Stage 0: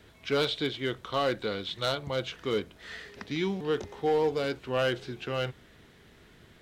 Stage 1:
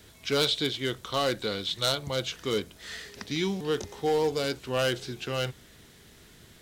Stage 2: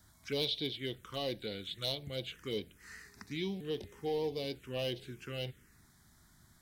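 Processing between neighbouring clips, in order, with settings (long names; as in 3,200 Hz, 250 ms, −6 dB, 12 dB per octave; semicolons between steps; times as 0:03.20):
bass and treble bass +2 dB, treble +13 dB
phaser swept by the level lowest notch 440 Hz, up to 1,400 Hz, full sweep at −24.5 dBFS; level −7.5 dB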